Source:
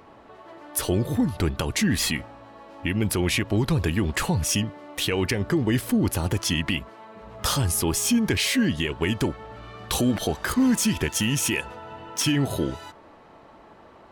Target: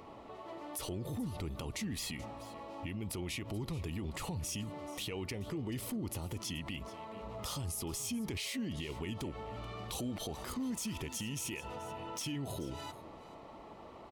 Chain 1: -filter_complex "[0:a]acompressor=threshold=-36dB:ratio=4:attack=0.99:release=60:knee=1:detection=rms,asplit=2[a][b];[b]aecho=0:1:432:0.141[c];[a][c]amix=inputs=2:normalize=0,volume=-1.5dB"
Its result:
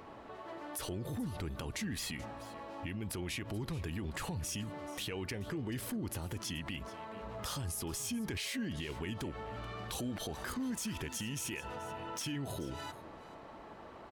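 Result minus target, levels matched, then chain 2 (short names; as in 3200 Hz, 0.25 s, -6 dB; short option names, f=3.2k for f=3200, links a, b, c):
2000 Hz band +2.5 dB
-filter_complex "[0:a]acompressor=threshold=-36dB:ratio=4:attack=0.99:release=60:knee=1:detection=rms,equalizer=f=1.6k:t=o:w=0.25:g=-14.5,asplit=2[a][b];[b]aecho=0:1:432:0.141[c];[a][c]amix=inputs=2:normalize=0,volume=-1.5dB"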